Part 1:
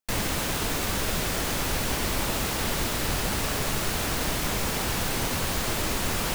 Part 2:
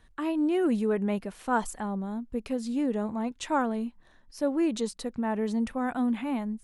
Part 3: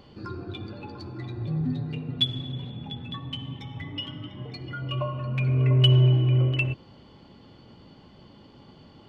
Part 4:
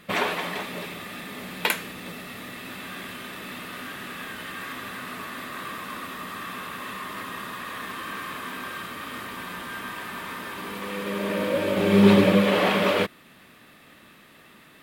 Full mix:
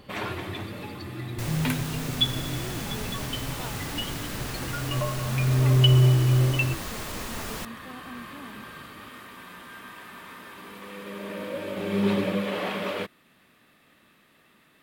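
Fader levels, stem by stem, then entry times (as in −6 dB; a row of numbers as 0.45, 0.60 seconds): −8.0, −15.5, +0.5, −8.5 decibels; 1.30, 2.10, 0.00, 0.00 seconds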